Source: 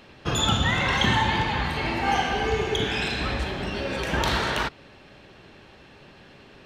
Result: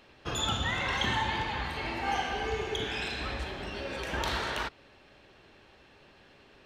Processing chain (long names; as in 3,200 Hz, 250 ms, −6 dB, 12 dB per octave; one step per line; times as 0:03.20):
parametric band 160 Hz −6 dB 1.3 octaves
level −7 dB